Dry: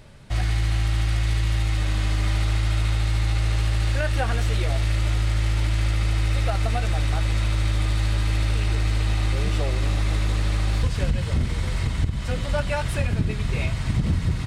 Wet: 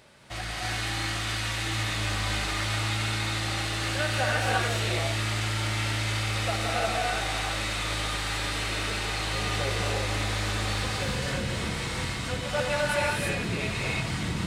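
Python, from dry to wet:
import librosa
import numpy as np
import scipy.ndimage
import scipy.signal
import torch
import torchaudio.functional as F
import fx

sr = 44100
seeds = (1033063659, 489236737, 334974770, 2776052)

y = fx.highpass(x, sr, hz=470.0, slope=6)
y = fx.rev_gated(y, sr, seeds[0], gate_ms=370, shape='rising', drr_db=-4.0)
y = y * 10.0 ** (-1.5 / 20.0)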